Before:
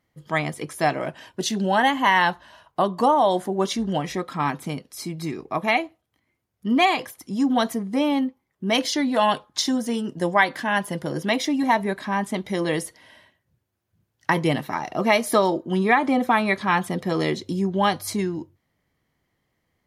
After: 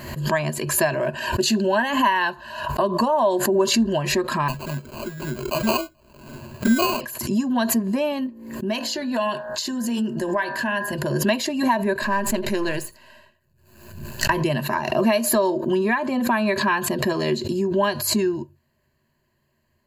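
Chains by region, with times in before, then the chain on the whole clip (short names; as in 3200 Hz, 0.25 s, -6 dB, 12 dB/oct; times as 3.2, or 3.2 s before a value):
4.48–7.01 envelope flanger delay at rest 8.9 ms, full sweep at -20.5 dBFS + sample-rate reducer 1800 Hz
8.26–10.93 de-hum 56.8 Hz, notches 33 + compressor 3:1, threshold -27 dBFS
12.02–14.3 half-wave gain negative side -7 dB + notch 3300 Hz, Q 26 + echo 83 ms -23 dB
whole clip: compressor, threshold -21 dBFS; ripple EQ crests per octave 1.4, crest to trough 14 dB; backwards sustainer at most 61 dB/s; gain +1.5 dB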